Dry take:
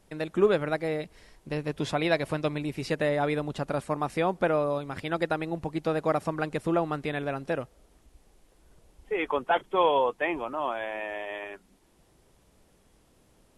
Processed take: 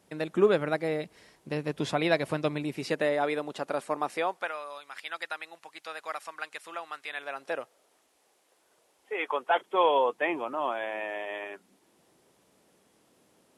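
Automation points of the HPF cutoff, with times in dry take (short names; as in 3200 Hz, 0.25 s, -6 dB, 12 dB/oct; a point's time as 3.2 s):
2.56 s 130 Hz
3.28 s 340 Hz
4.09 s 340 Hz
4.53 s 1400 Hz
7.04 s 1400 Hz
7.55 s 520 Hz
9.38 s 520 Hz
10.27 s 200 Hz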